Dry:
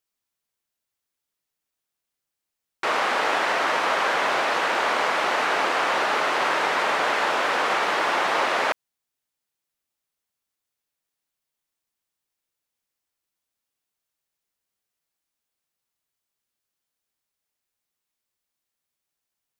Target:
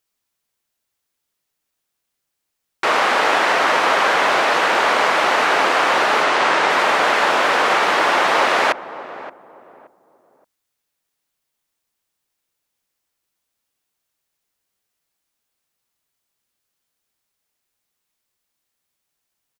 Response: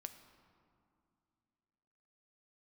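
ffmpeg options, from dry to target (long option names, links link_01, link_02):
-filter_complex "[0:a]asettb=1/sr,asplit=3[link_01][link_02][link_03];[link_01]atrim=end=6.244[link_04];[link_02]atrim=start=6.24:end=6.7,asetpts=PTS-STARTPTS,afade=type=in:duration=0.004:curve=qsin,afade=type=out:start_time=0.456:duration=0.004:curve=qsin,lowpass=9200[link_05];[link_03]atrim=start=6.696[link_06];[link_04][link_05]acrossfade=duration=0.004:curve1=hsin:curve2=qsin[link_07];[link_07][link_06]acrossfade=duration=0.004:curve1=qsin:curve2=hsin,asplit=2[link_08][link_09];[link_09]adelay=574,lowpass=frequency=810:poles=1,volume=-12.5dB,asplit=2[link_10][link_11];[link_11]adelay=574,lowpass=frequency=810:poles=1,volume=0.34,asplit=2[link_12][link_13];[link_13]adelay=574,lowpass=frequency=810:poles=1,volume=0.34[link_14];[link_08][link_10][link_12][link_14]amix=inputs=4:normalize=0,volume=6.5dB"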